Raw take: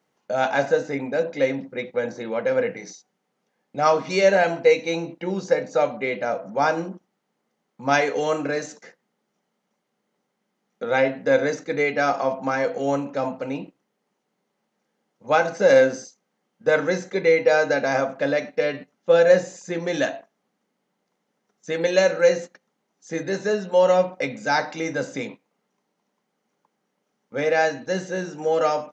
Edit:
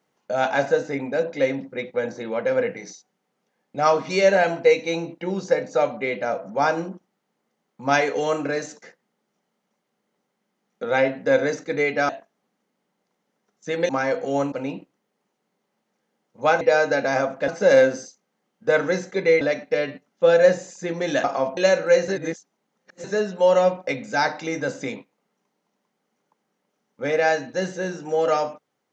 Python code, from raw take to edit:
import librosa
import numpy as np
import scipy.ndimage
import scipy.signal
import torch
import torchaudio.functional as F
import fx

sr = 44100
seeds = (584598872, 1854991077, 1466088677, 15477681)

y = fx.edit(x, sr, fx.swap(start_s=12.09, length_s=0.33, other_s=20.1, other_length_s=1.8),
    fx.cut(start_s=13.05, length_s=0.33),
    fx.move(start_s=17.4, length_s=0.87, to_s=15.47),
    fx.reverse_span(start_s=22.41, length_s=0.96), tone=tone)